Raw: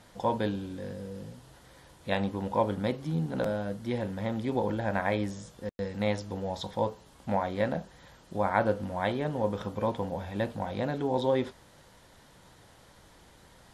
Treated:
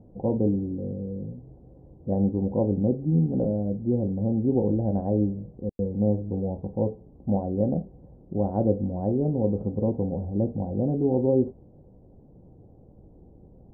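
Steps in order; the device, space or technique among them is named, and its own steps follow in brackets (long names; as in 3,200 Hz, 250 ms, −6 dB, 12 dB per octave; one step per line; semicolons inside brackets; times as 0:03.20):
under water (low-pass filter 450 Hz 24 dB per octave; parametric band 770 Hz +8.5 dB 0.22 octaves)
level +8.5 dB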